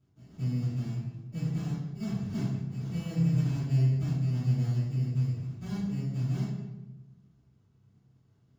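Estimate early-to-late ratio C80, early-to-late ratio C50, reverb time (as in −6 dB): 2.5 dB, −0.5 dB, 1.1 s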